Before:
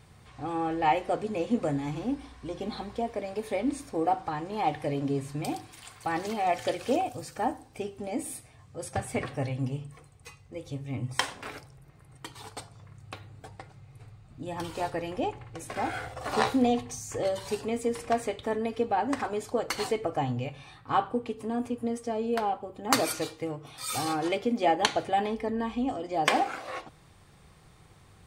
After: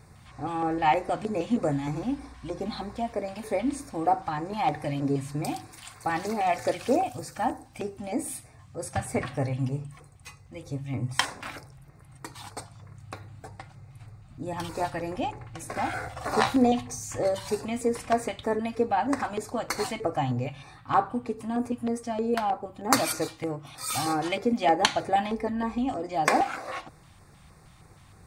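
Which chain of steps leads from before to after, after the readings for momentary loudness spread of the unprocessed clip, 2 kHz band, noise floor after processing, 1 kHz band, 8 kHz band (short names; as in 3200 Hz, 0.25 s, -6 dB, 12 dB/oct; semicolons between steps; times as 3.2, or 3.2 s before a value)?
17 LU, +2.0 dB, -53 dBFS, +2.0 dB, +2.5 dB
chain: LFO notch square 3.2 Hz 430–3100 Hz; gain +3 dB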